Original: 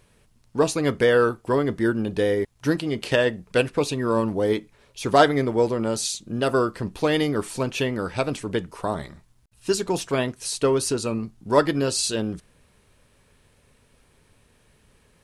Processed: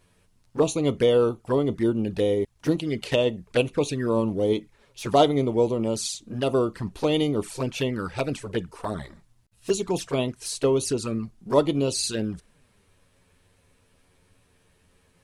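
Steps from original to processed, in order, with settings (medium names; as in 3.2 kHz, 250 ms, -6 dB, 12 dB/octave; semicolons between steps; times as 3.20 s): touch-sensitive flanger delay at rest 11.7 ms, full sweep at -19.5 dBFS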